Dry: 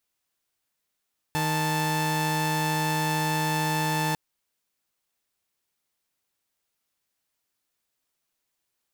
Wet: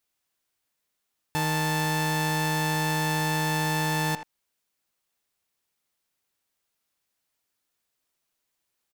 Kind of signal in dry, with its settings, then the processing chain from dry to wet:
held notes D#3/A5 saw, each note −24 dBFS 2.80 s
far-end echo of a speakerphone 80 ms, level −9 dB

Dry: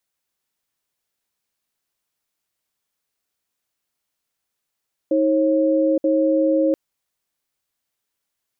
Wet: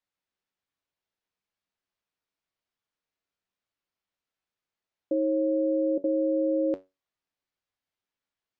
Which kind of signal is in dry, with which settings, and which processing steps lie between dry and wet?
tone pair in a cadence 316 Hz, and 542 Hz, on 0.87 s, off 0.06 s, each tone −17.5 dBFS 1.63 s
high-frequency loss of the air 140 metres
tuned comb filter 94 Hz, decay 0.22 s, harmonics all, mix 70%

